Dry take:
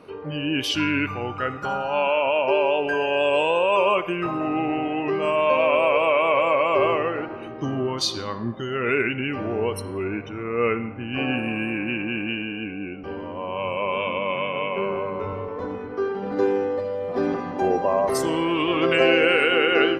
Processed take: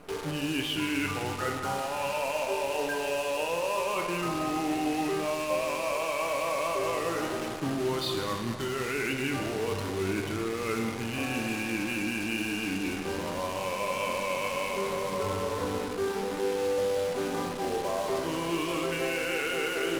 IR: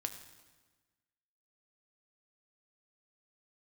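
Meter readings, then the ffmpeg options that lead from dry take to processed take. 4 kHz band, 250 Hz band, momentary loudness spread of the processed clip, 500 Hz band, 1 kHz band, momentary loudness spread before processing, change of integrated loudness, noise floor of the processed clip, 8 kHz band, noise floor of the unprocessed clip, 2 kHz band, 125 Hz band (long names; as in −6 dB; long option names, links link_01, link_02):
−6.0 dB, −6.0 dB, 3 LU, −8.0 dB, −7.5 dB, 11 LU, −7.5 dB, −34 dBFS, +3.0 dB, −35 dBFS, −7.5 dB, −4.0 dB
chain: -filter_complex "[0:a]lowpass=frequency=3600:width=0.5412,lowpass=frequency=3600:width=1.3066,areverse,acompressor=threshold=-29dB:ratio=8,areverse,acrusher=bits=7:dc=4:mix=0:aa=0.000001[link_01];[1:a]atrim=start_sample=2205,asetrate=24255,aresample=44100[link_02];[link_01][link_02]afir=irnorm=-1:irlink=0,volume=-1dB"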